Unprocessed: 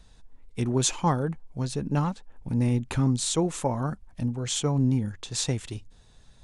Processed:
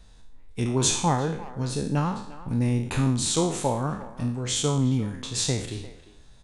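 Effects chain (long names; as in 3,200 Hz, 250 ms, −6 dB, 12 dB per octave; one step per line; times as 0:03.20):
peak hold with a decay on every bin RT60 0.60 s
0:01.02–0:01.89: notch filter 1,100 Hz, Q 9
far-end echo of a speakerphone 350 ms, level −15 dB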